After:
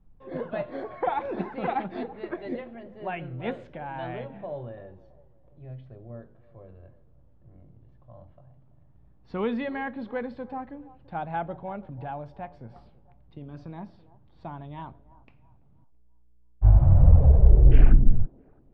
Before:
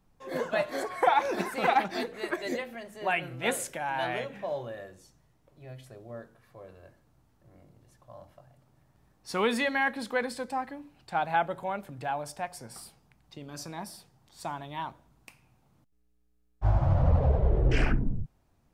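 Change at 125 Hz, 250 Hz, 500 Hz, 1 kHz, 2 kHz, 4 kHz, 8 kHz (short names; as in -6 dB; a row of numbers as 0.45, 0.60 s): +7.5 dB, +2.5 dB, -2.0 dB, -4.5 dB, -9.0 dB, -12.0 dB, under -35 dB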